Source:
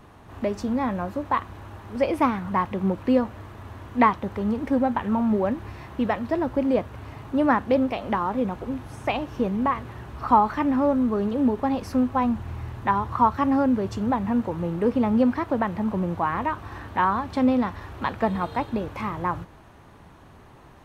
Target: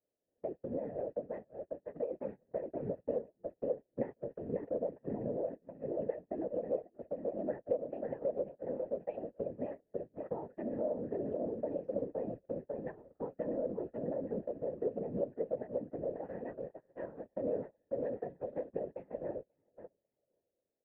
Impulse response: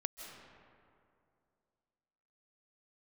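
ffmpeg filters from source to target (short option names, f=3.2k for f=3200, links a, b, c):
-filter_complex "[0:a]asplit=3[a][b][c];[a]bandpass=f=530:t=q:w=8,volume=0dB[d];[b]bandpass=f=1.84k:t=q:w=8,volume=-6dB[e];[c]bandpass=f=2.48k:t=q:w=8,volume=-9dB[f];[d][e][f]amix=inputs=3:normalize=0,asplit=2[g][h];[h]adelay=542,lowpass=f=3.7k:p=1,volume=-5.5dB,asplit=2[i][j];[j]adelay=542,lowpass=f=3.7k:p=1,volume=0.29,asplit=2[k][l];[l]adelay=542,lowpass=f=3.7k:p=1,volume=0.29,asplit=2[m][n];[n]adelay=542,lowpass=f=3.7k:p=1,volume=0.29[o];[g][i][k][m][o]amix=inputs=5:normalize=0,acompressor=threshold=-37dB:ratio=3,firequalizer=gain_entry='entry(340,0);entry(1200,-15);entry(3100,-27)':delay=0.05:min_phase=1,agate=range=-28dB:threshold=-46dB:ratio=16:detection=peak,afftfilt=real='hypot(re,im)*cos(2*PI*random(0))':imag='hypot(re,im)*sin(2*PI*random(1))':win_size=512:overlap=0.75,volume=11dB"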